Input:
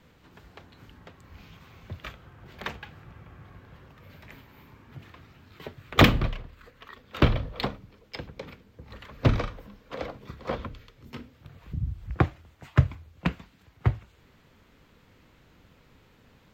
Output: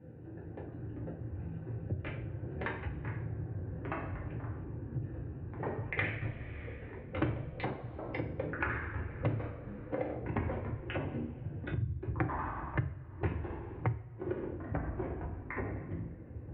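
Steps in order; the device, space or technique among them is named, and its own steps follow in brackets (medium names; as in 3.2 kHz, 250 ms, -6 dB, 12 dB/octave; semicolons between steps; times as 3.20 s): local Wiener filter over 41 samples; 5.84–6.24 s: ten-band graphic EQ 250 Hz -11 dB, 1 kHz -9 dB, 2 kHz +11 dB, 4 kHz -3 dB; two-slope reverb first 0.43 s, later 1.7 s, from -25 dB, DRR -5.5 dB; ever faster or slower copies 153 ms, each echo -6 st, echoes 3, each echo -6 dB; bass amplifier (compression 6:1, threshold -36 dBFS, peak gain reduction 27 dB; cabinet simulation 63–2300 Hz, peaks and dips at 110 Hz +3 dB, 190 Hz -8 dB, 310 Hz +4 dB, 1.3 kHz -5 dB); trim +3.5 dB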